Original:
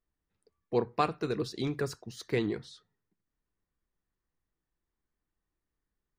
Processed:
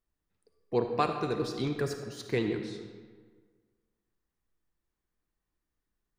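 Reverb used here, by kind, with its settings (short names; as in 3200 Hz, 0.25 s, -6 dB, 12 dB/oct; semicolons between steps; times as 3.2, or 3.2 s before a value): digital reverb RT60 1.6 s, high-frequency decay 0.65×, pre-delay 15 ms, DRR 5.5 dB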